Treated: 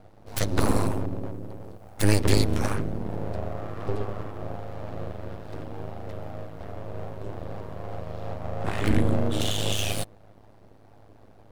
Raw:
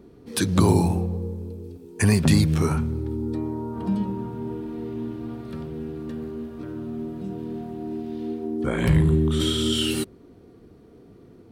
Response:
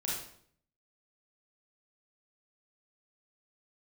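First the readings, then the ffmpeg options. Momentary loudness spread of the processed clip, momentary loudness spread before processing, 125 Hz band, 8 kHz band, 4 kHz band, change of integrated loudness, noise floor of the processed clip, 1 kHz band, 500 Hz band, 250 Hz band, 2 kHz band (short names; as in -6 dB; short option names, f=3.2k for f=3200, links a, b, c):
15 LU, 15 LU, -5.0 dB, -2.0 dB, -4.0 dB, -5.0 dB, -52 dBFS, -0.5 dB, -2.5 dB, -7.0 dB, -1.5 dB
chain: -af "aeval=exprs='val(0)*sin(2*PI*52*n/s)':c=same,aeval=exprs='abs(val(0))':c=same,volume=1.5dB"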